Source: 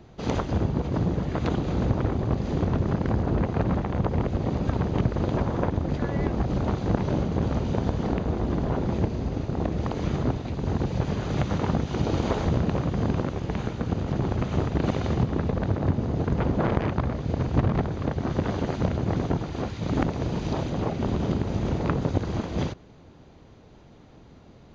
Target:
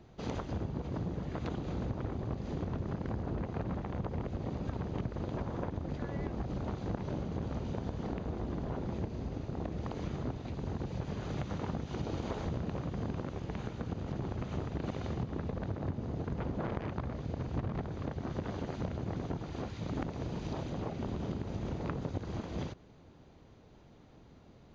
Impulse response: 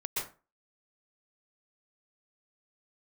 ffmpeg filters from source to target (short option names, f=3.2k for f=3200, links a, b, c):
-af "acompressor=threshold=-29dB:ratio=2,volume=-7dB"